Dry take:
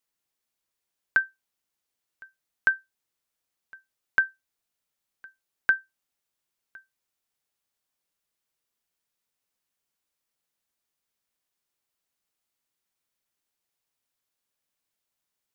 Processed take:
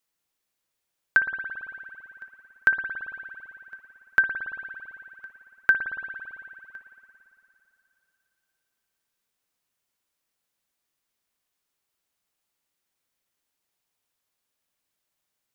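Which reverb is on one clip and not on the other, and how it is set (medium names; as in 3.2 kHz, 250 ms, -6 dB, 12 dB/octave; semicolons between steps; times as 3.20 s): spring tank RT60 3 s, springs 56 ms, chirp 70 ms, DRR 5.5 dB; trim +2.5 dB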